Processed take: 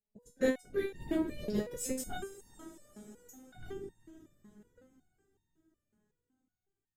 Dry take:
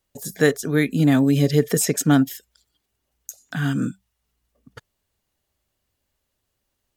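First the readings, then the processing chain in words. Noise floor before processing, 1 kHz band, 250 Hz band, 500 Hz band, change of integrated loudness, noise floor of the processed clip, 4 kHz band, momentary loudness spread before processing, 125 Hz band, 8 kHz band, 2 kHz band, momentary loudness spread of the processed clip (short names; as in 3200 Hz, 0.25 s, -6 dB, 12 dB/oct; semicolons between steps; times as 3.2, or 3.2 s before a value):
-77 dBFS, -16.0 dB, -18.0 dB, -12.5 dB, -16.5 dB, under -85 dBFS, -18.0 dB, 12 LU, -27.5 dB, -17.0 dB, -17.5 dB, 21 LU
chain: Wiener smoothing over 41 samples; whisperiser; on a send: diffused feedback echo 0.453 s, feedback 54%, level -16 dB; on the sum: stepped resonator 5.4 Hz 210–910 Hz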